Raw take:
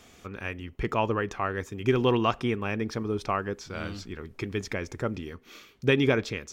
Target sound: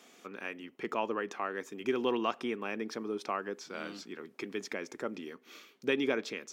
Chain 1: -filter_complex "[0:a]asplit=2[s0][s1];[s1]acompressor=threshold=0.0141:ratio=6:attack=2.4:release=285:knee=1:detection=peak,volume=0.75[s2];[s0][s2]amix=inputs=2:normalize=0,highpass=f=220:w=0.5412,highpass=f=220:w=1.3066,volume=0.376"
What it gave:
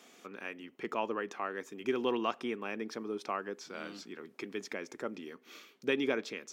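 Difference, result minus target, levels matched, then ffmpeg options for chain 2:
compression: peak gain reduction +7.5 dB
-filter_complex "[0:a]asplit=2[s0][s1];[s1]acompressor=threshold=0.0398:ratio=6:attack=2.4:release=285:knee=1:detection=peak,volume=0.75[s2];[s0][s2]amix=inputs=2:normalize=0,highpass=f=220:w=0.5412,highpass=f=220:w=1.3066,volume=0.376"

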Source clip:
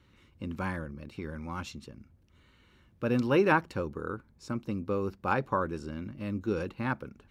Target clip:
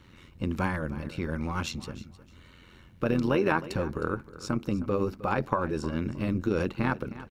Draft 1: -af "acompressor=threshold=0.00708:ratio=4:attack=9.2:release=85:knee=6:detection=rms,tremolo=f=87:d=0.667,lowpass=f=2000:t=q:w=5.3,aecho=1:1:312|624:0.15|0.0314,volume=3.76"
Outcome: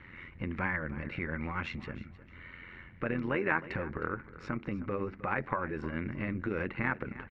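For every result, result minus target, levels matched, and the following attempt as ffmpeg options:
compression: peak gain reduction +8 dB; 2 kHz band +6.0 dB
-af "acompressor=threshold=0.0237:ratio=4:attack=9.2:release=85:knee=6:detection=rms,tremolo=f=87:d=0.667,lowpass=f=2000:t=q:w=5.3,aecho=1:1:312|624:0.15|0.0314,volume=3.76"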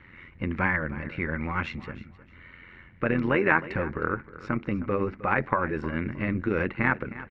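2 kHz band +6.0 dB
-af "acompressor=threshold=0.0237:ratio=4:attack=9.2:release=85:knee=6:detection=rms,tremolo=f=87:d=0.667,aecho=1:1:312|624:0.15|0.0314,volume=3.76"

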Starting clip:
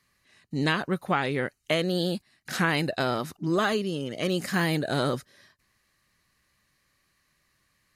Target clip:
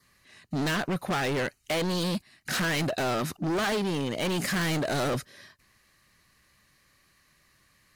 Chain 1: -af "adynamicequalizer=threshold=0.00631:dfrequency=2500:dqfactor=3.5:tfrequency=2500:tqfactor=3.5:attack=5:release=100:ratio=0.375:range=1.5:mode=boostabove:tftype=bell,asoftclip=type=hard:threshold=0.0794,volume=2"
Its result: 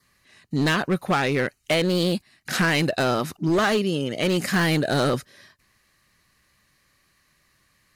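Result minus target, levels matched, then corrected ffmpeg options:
hard clipper: distortion -7 dB
-af "adynamicequalizer=threshold=0.00631:dfrequency=2500:dqfactor=3.5:tfrequency=2500:tqfactor=3.5:attack=5:release=100:ratio=0.375:range=1.5:mode=boostabove:tftype=bell,asoftclip=type=hard:threshold=0.0266,volume=2"

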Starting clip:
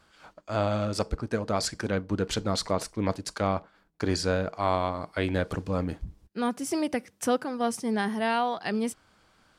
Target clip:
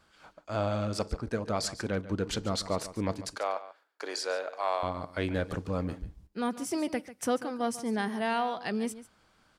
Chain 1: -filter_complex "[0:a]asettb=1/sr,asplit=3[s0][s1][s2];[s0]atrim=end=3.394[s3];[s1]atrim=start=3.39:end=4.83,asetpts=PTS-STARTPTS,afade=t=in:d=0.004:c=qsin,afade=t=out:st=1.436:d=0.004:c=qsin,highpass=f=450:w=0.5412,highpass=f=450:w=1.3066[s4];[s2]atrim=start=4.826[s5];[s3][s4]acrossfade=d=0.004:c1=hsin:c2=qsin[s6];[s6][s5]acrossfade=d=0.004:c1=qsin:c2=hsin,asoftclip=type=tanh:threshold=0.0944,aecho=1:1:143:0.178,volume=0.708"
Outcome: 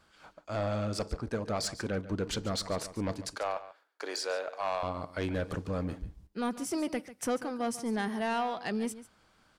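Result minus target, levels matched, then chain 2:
saturation: distortion +14 dB
-filter_complex "[0:a]asettb=1/sr,asplit=3[s0][s1][s2];[s0]atrim=end=3.394[s3];[s1]atrim=start=3.39:end=4.83,asetpts=PTS-STARTPTS,afade=t=in:d=0.004:c=qsin,afade=t=out:st=1.436:d=0.004:c=qsin,highpass=f=450:w=0.5412,highpass=f=450:w=1.3066[s4];[s2]atrim=start=4.826[s5];[s3][s4]acrossfade=d=0.004:c1=hsin:c2=qsin[s6];[s6][s5]acrossfade=d=0.004:c1=qsin:c2=hsin,asoftclip=type=tanh:threshold=0.299,aecho=1:1:143:0.178,volume=0.708"

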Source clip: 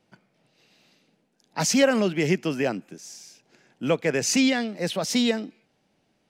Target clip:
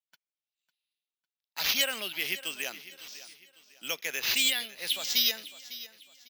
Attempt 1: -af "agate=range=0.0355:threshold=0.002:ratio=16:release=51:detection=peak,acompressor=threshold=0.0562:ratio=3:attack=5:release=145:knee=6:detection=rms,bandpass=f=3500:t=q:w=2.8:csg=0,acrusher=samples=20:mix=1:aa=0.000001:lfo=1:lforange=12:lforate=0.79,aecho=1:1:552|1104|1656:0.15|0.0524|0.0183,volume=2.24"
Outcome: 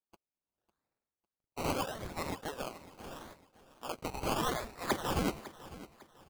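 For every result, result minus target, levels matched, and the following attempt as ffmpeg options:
decimation with a swept rate: distortion +22 dB; compression: peak gain reduction +10 dB
-af "agate=range=0.0355:threshold=0.002:ratio=16:release=51:detection=peak,acompressor=threshold=0.0562:ratio=3:attack=5:release=145:knee=6:detection=rms,bandpass=f=3500:t=q:w=2.8:csg=0,acrusher=samples=4:mix=1:aa=0.000001:lfo=1:lforange=2.4:lforate=0.79,aecho=1:1:552|1104|1656:0.15|0.0524|0.0183,volume=2.24"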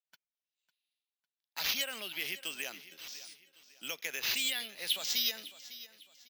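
compression: peak gain reduction +10 dB
-af "agate=range=0.0355:threshold=0.002:ratio=16:release=51:detection=peak,bandpass=f=3500:t=q:w=2.8:csg=0,acrusher=samples=4:mix=1:aa=0.000001:lfo=1:lforange=2.4:lforate=0.79,aecho=1:1:552|1104|1656:0.15|0.0524|0.0183,volume=2.24"

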